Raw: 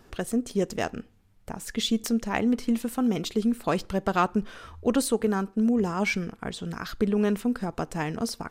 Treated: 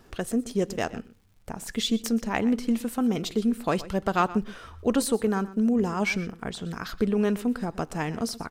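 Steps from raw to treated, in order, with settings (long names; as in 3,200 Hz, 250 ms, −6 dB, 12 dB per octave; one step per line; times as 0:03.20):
surface crackle 150 per second −54 dBFS
slap from a distant wall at 21 metres, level −17 dB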